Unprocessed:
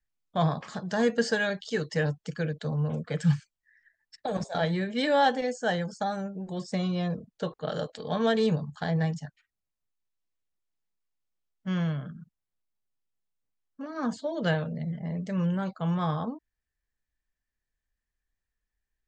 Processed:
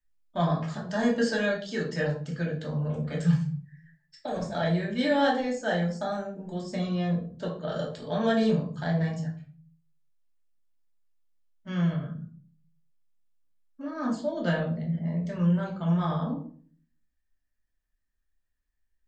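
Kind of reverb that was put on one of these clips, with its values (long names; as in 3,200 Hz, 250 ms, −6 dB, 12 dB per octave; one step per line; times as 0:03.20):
rectangular room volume 410 cubic metres, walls furnished, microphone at 2.7 metres
level −5 dB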